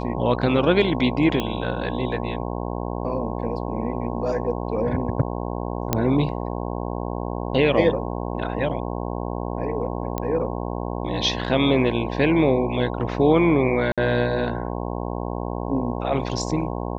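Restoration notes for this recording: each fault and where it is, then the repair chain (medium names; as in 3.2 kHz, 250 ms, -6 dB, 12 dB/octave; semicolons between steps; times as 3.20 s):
buzz 60 Hz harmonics 18 -28 dBFS
1.40 s: pop -11 dBFS
5.93 s: pop -5 dBFS
10.18 s: pop -12 dBFS
13.92–13.98 s: dropout 56 ms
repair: de-click; de-hum 60 Hz, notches 18; interpolate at 13.92 s, 56 ms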